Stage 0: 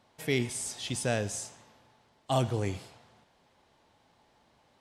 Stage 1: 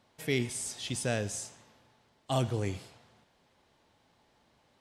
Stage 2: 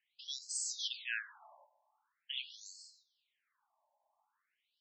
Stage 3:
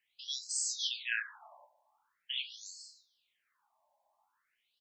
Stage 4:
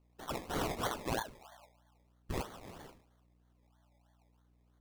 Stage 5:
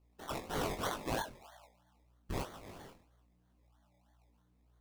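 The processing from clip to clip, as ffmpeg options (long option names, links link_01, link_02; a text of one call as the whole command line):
ffmpeg -i in.wav -af "equalizer=frequency=830:width=1.5:gain=-3,volume=-1dB" out.wav
ffmpeg -i in.wav -af "agate=range=-10dB:threshold=-58dB:ratio=16:detection=peak,afftfilt=real='re*between(b*sr/1024,740*pow(5900/740,0.5+0.5*sin(2*PI*0.44*pts/sr))/1.41,740*pow(5900/740,0.5+0.5*sin(2*PI*0.44*pts/sr))*1.41)':imag='im*between(b*sr/1024,740*pow(5900/740,0.5+0.5*sin(2*PI*0.44*pts/sr))/1.41,740*pow(5900/740,0.5+0.5*sin(2*PI*0.44*pts/sr))*1.41)':win_size=1024:overlap=0.75,volume=2.5dB" out.wav
ffmpeg -i in.wav -af "aecho=1:1:17|35:0.501|0.251,volume=3dB" out.wav
ffmpeg -i in.wav -af "acrusher=samples=24:mix=1:aa=0.000001:lfo=1:lforange=14.4:lforate=3.1,aeval=exprs='val(0)+0.000398*(sin(2*PI*60*n/s)+sin(2*PI*2*60*n/s)/2+sin(2*PI*3*60*n/s)/3+sin(2*PI*4*60*n/s)/4+sin(2*PI*5*60*n/s)/5)':channel_layout=same" out.wav
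ffmpeg -i in.wav -af "flanger=delay=18.5:depth=4.5:speed=1.9,volume=2.5dB" out.wav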